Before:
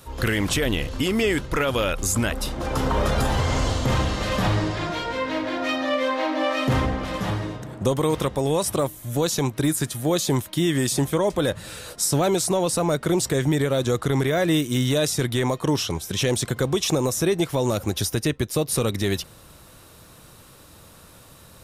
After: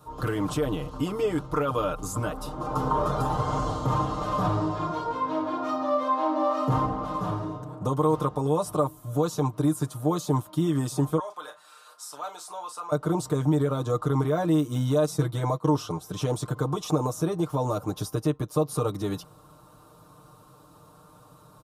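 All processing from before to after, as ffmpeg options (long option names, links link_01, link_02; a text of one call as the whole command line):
ffmpeg -i in.wav -filter_complex "[0:a]asettb=1/sr,asplit=3[link_01][link_02][link_03];[link_01]atrim=end=11.194[link_04];[link_02]atrim=start=11.19:end=12.92,asetpts=PTS-STARTPTS,afade=type=in:duration=0.004:curve=qsin,afade=type=out:start_time=1.726:duration=0.004:curve=qsin,highpass=1400,highshelf=frequency=4600:gain=-7.5,asplit=2[link_05][link_06];[link_06]adelay=37,volume=-10.5dB[link_07];[link_05][link_07]amix=inputs=2:normalize=0,atrim=end_sample=76293[link_08];[link_03]atrim=start=12.916[link_09];[link_04][link_08]acrossfade=duration=0.004:curve1=hsin:curve2=qsin[link_10];[link_10][link_09]acrossfade=duration=0.004:curve1=qsin:curve2=hsin,asettb=1/sr,asplit=3[link_11][link_12][link_13];[link_11]atrim=end=15.064[link_14];[link_12]atrim=start=15.06:end=15.68,asetpts=PTS-STARTPTS,afade=type=in:duration=0.004:curve=qsin,afade=type=out:start_time=0.616:duration=0.004:curve=qsin,agate=range=-11dB:threshold=-30dB:ratio=16:release=100:detection=peak,aecho=1:1:6.1:0.59,atrim=end_sample=27342[link_15];[link_13]atrim=start=15.676[link_16];[link_14][link_15]acrossfade=duration=0.004:curve1=hsin:curve2=qsin[link_17];[link_17][link_16]acrossfade=duration=0.004:curve1=qsin:curve2=hsin,highpass=44,highshelf=frequency=1500:width_type=q:width=3:gain=-8,aecho=1:1:6.6:0.88,volume=-6.5dB" out.wav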